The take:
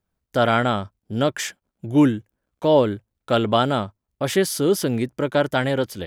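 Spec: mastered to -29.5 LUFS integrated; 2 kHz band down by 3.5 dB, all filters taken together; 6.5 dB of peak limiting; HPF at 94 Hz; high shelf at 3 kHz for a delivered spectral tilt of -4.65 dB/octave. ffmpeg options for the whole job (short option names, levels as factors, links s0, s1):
-af "highpass=94,equalizer=f=2000:t=o:g=-7,highshelf=f=3000:g=5.5,volume=0.501,alimiter=limit=0.158:level=0:latency=1"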